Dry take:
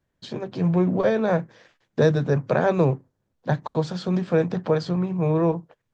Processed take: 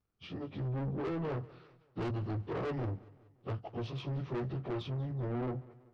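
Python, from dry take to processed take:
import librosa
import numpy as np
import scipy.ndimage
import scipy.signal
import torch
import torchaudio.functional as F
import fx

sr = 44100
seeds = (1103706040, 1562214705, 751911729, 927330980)

y = fx.pitch_bins(x, sr, semitones=-5.0)
y = 10.0 ** (-27.0 / 20.0) * np.tanh(y / 10.0 ** (-27.0 / 20.0))
y = fx.echo_feedback(y, sr, ms=190, feedback_pct=48, wet_db=-21)
y = y * librosa.db_to_amplitude(-6.0)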